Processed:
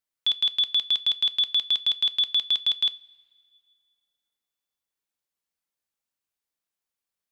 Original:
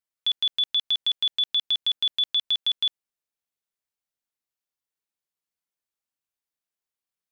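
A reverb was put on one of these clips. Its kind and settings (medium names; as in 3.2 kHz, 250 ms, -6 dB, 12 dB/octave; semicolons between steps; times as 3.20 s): two-slope reverb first 0.26 s, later 2.1 s, from -20 dB, DRR 14 dB; trim +1.5 dB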